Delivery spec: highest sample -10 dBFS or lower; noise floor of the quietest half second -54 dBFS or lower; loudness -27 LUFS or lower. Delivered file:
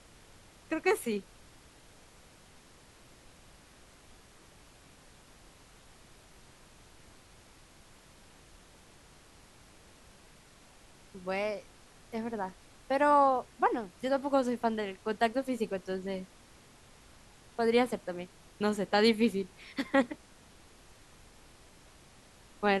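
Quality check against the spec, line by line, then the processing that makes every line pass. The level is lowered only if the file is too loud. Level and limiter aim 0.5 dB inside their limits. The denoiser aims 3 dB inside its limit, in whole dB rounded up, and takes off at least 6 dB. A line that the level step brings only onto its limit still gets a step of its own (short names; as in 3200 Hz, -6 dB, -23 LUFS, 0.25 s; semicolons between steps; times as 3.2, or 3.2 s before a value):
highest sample -12.5 dBFS: OK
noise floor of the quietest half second -58 dBFS: OK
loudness -31.0 LUFS: OK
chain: none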